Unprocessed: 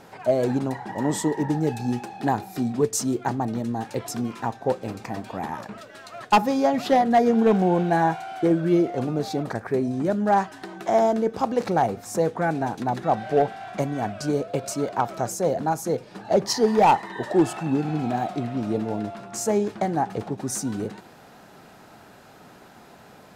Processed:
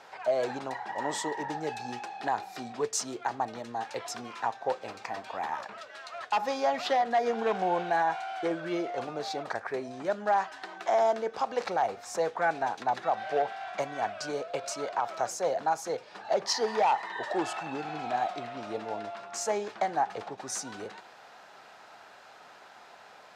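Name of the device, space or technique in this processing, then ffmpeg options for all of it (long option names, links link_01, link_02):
DJ mixer with the lows and highs turned down: -filter_complex "[0:a]acrossover=split=540 6900:gain=0.1 1 0.158[link_01][link_02][link_03];[link_01][link_02][link_03]amix=inputs=3:normalize=0,alimiter=limit=-17.5dB:level=0:latency=1:release=76"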